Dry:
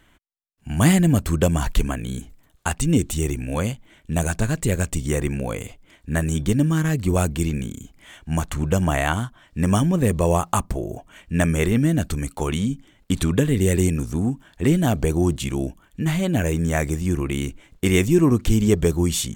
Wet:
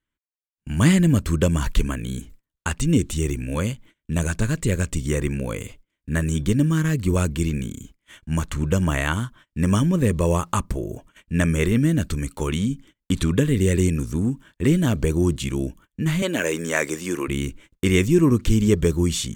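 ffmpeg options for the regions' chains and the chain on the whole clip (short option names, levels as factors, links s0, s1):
-filter_complex "[0:a]asettb=1/sr,asplit=3[s0][s1][s2];[s0]atrim=end=16.224[s3];[s1]atrim=start=16.22:end=17.28,asetpts=PTS-STARTPTS,afade=t=in:d=0.004:c=qsin,afade=t=out:st=1.056:d=0.004:c=qsin,highpass=410,acontrast=41[s4];[s2]atrim=start=17.276[s5];[s3][s4]acrossfade=d=0.004:c1=hsin:c2=qsin[s6];[s6][s5]acrossfade=d=0.004:c1=qsin:c2=hsin,agate=range=0.0447:threshold=0.00631:ratio=16:detection=peak,acrossover=split=8200[s7][s8];[s8]acompressor=threshold=0.0112:ratio=4:attack=1:release=60[s9];[s7][s9]amix=inputs=2:normalize=0,equalizer=f=740:t=o:w=0.31:g=-14"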